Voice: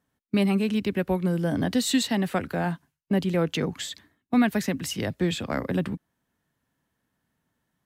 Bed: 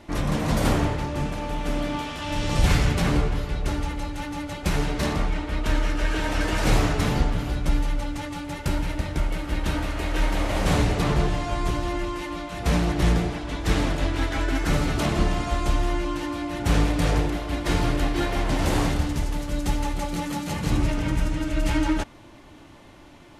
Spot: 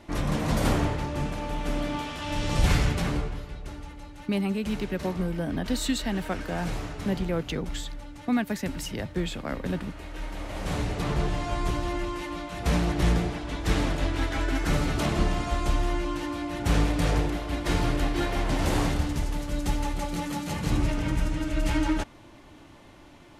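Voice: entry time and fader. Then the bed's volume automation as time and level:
3.95 s, -4.5 dB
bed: 2.82 s -2.5 dB
3.70 s -13 dB
10.20 s -13 dB
11.45 s -2.5 dB

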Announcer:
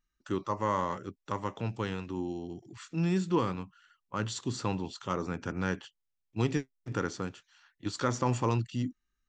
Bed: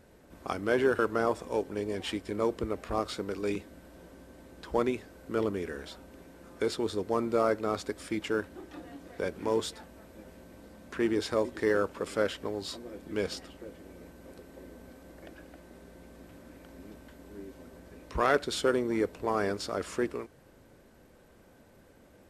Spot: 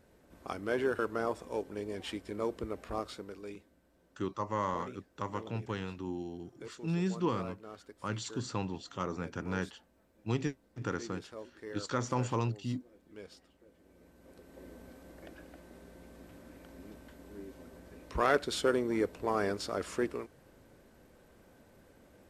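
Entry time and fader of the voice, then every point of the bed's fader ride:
3.90 s, -3.5 dB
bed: 2.95 s -5.5 dB
3.78 s -17.5 dB
13.62 s -17.5 dB
14.68 s -2 dB

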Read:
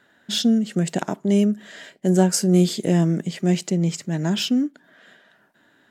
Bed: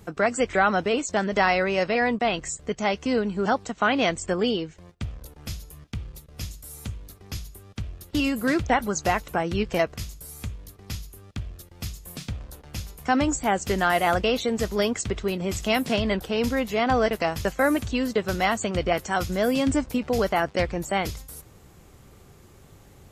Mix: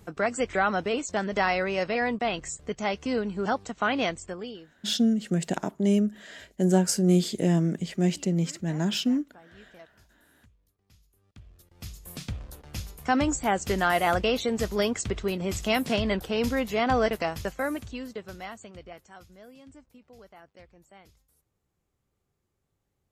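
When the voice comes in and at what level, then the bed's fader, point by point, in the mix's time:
4.55 s, -4.5 dB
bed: 4.03 s -4 dB
5.02 s -27.5 dB
10.91 s -27.5 dB
12.10 s -2 dB
17.07 s -2 dB
19.57 s -28 dB

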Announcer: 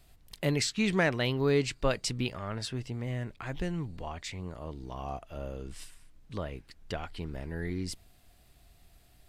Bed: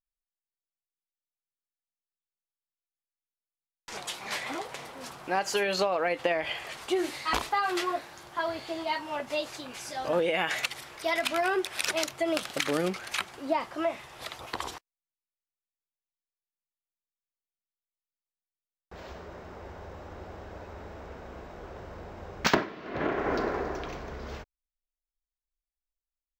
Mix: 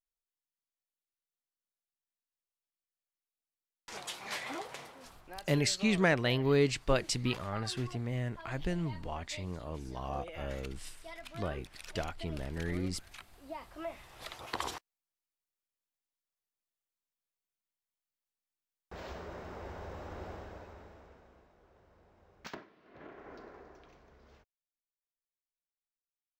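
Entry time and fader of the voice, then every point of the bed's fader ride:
5.05 s, -0.5 dB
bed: 4.79 s -5 dB
5.35 s -19.5 dB
13.27 s -19.5 dB
14.67 s -0.5 dB
20.29 s -0.5 dB
21.55 s -21.5 dB

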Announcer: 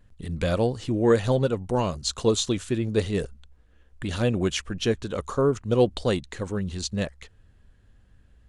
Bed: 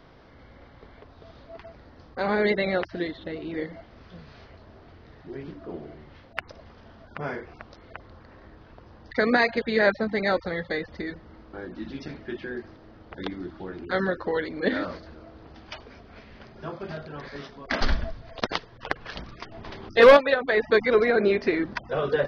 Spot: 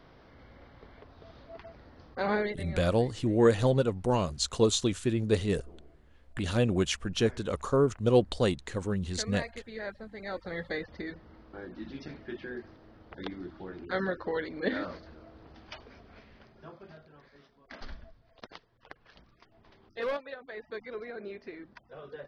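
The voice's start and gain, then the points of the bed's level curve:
2.35 s, -2.5 dB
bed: 2.36 s -3.5 dB
2.59 s -18 dB
10.16 s -18 dB
10.59 s -5.5 dB
16.09 s -5.5 dB
17.33 s -20 dB

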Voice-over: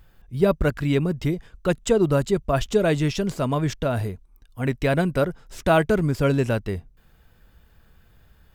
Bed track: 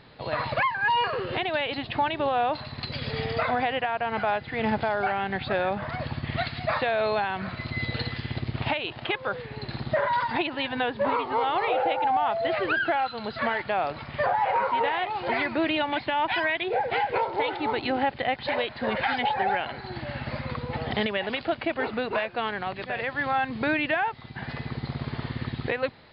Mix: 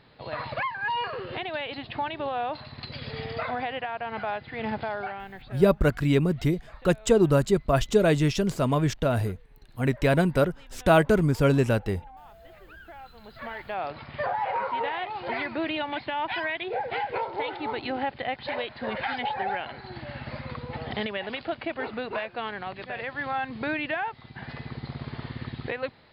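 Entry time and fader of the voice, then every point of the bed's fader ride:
5.20 s, -0.5 dB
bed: 4.94 s -5 dB
5.88 s -25 dB
12.69 s -25 dB
13.86 s -4 dB

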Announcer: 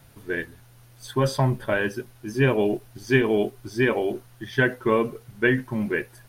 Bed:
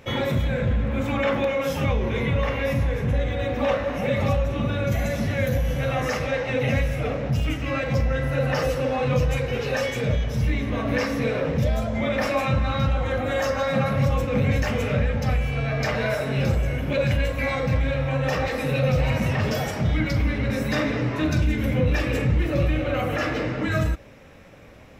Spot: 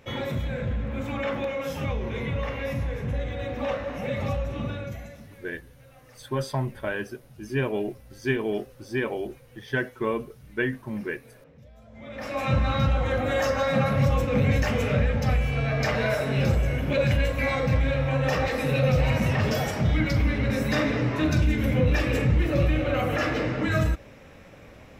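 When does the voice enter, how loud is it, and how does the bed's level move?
5.15 s, -6.0 dB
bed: 4.69 s -6 dB
5.49 s -29 dB
11.73 s -29 dB
12.53 s -0.5 dB

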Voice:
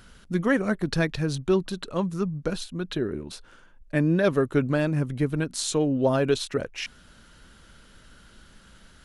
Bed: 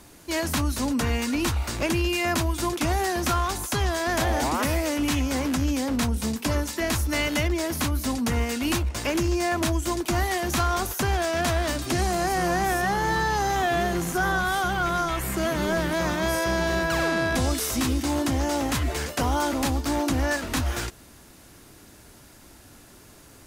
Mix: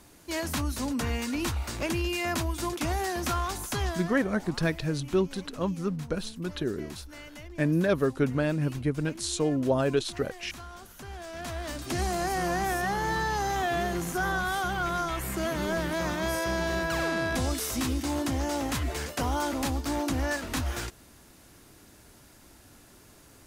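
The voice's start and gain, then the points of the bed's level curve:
3.65 s, -3.0 dB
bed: 3.88 s -5 dB
4.20 s -20.5 dB
10.92 s -20.5 dB
12.03 s -4.5 dB

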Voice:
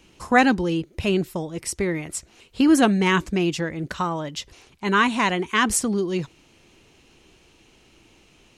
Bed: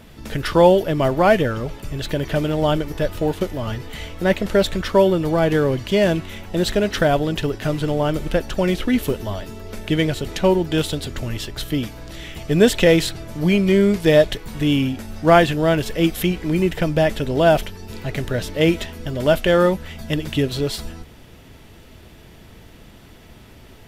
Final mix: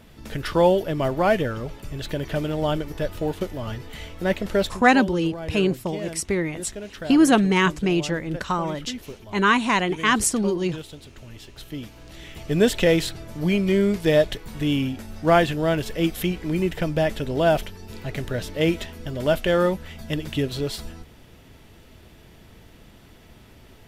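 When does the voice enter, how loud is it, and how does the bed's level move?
4.50 s, +0.5 dB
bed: 4.64 s -5 dB
4.87 s -16.5 dB
11.24 s -16.5 dB
12.49 s -4.5 dB

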